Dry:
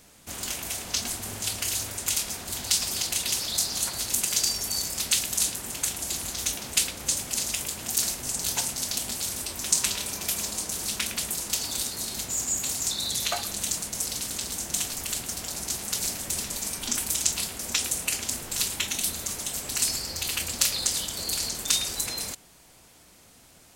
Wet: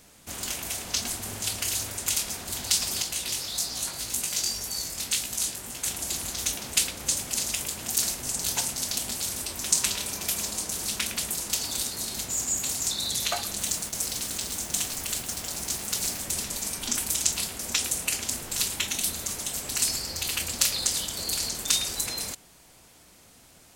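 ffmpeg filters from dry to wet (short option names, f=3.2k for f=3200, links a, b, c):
-filter_complex "[0:a]asplit=3[a][b][c];[a]afade=t=out:st=3.02:d=0.02[d];[b]flanger=delay=15.5:depth=6.7:speed=1.9,afade=t=in:st=3.02:d=0.02,afade=t=out:st=5.84:d=0.02[e];[c]afade=t=in:st=5.84:d=0.02[f];[d][e][f]amix=inputs=3:normalize=0,asettb=1/sr,asplit=3[g][h][i];[g]atrim=end=13.584[j];[h]atrim=start=13.58:end=16.24,asetpts=PTS-STARTPTS,afade=t=in:d=0.004:c=qsin,afade=t=out:st=2.656:d=0.004:c=qsin,acrusher=bits=5:mix=0:aa=0.5[k];[i]atrim=start=16.236[l];[j][k]acrossfade=d=0.004:c1=hsin:c2=qsin[m];[m][l]acrossfade=d=0.004:c1=qsin:c2=hsin"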